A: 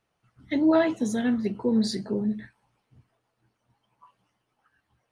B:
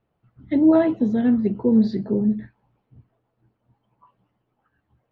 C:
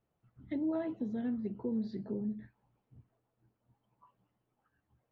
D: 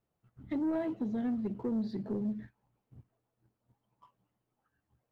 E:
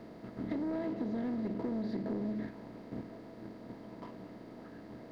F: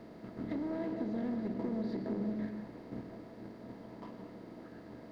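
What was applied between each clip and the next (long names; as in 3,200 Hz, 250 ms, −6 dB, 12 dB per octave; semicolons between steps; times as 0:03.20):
low-pass filter 4,200 Hz 24 dB per octave; tilt shelving filter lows +7.5 dB
downward compressor 2 to 1, threshold −31 dBFS, peak gain reduction 11 dB; level −8.5 dB
leveller curve on the samples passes 1
compressor on every frequency bin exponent 0.4; downward compressor, threshold −33 dBFS, peak gain reduction 6.5 dB
convolution reverb RT60 1.0 s, pre-delay 102 ms, DRR 7 dB; level −1.5 dB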